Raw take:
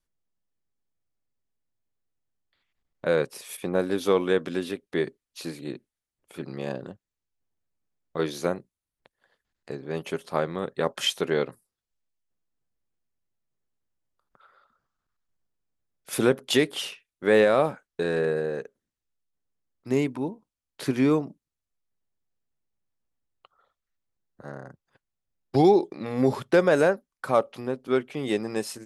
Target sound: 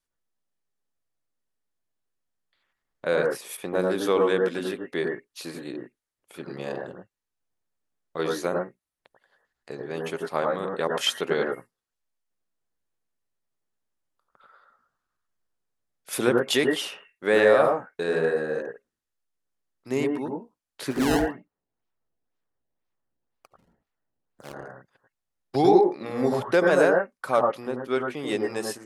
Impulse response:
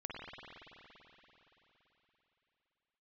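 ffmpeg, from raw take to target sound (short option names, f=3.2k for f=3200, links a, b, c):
-filter_complex "[0:a]lowshelf=f=270:g=-9,asplit=3[a][b][c];[a]afade=t=out:st=20.9:d=0.02[d];[b]acrusher=samples=22:mix=1:aa=0.000001:lfo=1:lforange=35.2:lforate=2,afade=t=in:st=20.9:d=0.02,afade=t=out:st=24.52:d=0.02[e];[c]afade=t=in:st=24.52:d=0.02[f];[d][e][f]amix=inputs=3:normalize=0[g];[1:a]atrim=start_sample=2205,atrim=end_sample=3969,asetrate=24255,aresample=44100[h];[g][h]afir=irnorm=-1:irlink=0,volume=3.5dB"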